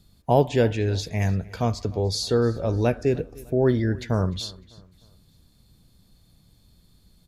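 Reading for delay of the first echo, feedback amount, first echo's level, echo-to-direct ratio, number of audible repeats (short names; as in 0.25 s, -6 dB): 0.302 s, 40%, -22.0 dB, -21.5 dB, 2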